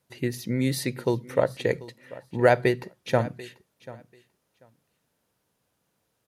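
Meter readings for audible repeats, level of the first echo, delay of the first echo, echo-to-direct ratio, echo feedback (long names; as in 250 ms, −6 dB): 2, −19.0 dB, 739 ms, −19.0 dB, 17%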